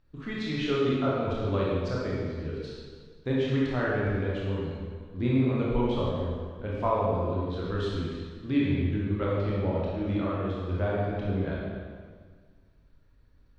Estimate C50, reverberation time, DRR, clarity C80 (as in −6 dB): −2.5 dB, 1.7 s, −6.0 dB, 0.0 dB